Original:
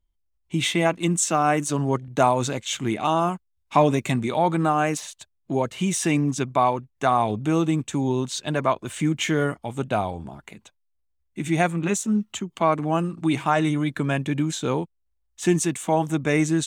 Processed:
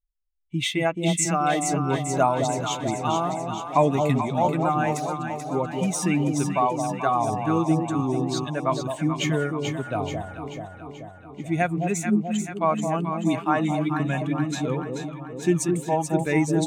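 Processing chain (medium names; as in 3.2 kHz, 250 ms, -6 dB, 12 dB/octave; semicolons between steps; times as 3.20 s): expander on every frequency bin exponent 1.5; echo whose repeats swap between lows and highs 217 ms, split 810 Hz, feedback 78%, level -4 dB; tape noise reduction on one side only decoder only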